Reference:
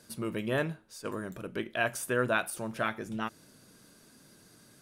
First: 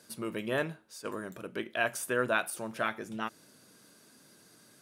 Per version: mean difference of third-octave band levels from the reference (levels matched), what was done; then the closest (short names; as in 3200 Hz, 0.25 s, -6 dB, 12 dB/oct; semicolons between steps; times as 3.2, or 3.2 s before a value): 1.5 dB: HPF 230 Hz 6 dB/oct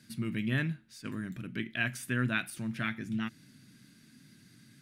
5.5 dB: graphic EQ 125/250/500/1000/2000/4000 Hz +11/+11/-11/-6/+11/+5 dB; gain -7 dB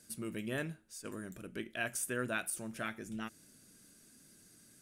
3.0 dB: graphic EQ 125/500/1000/4000/8000 Hz -5/-6/-10/-5/+5 dB; gain -2.5 dB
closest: first